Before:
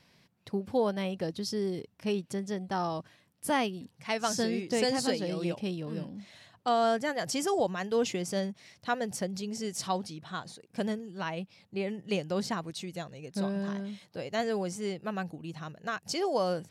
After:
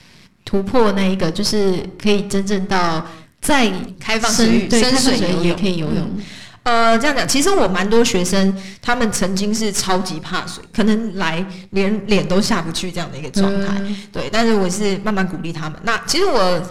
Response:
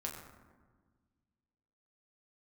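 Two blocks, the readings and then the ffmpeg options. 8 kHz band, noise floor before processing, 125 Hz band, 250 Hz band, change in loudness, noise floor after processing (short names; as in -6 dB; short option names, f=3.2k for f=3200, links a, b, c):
+17.0 dB, -68 dBFS, +16.5 dB, +16.0 dB, +15.0 dB, -44 dBFS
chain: -filter_complex "[0:a]aeval=exprs='if(lt(val(0),0),0.251*val(0),val(0))':c=same,lowpass=11k,equalizer=f=630:w=1.1:g=-6,asplit=2[a][b];[1:a]atrim=start_sample=2205,afade=t=out:st=0.31:d=0.01,atrim=end_sample=14112[c];[b][c]afir=irnorm=-1:irlink=0,volume=-7dB[d];[a][d]amix=inputs=2:normalize=0,alimiter=level_in=20.5dB:limit=-1dB:release=50:level=0:latency=1,volume=-1dB"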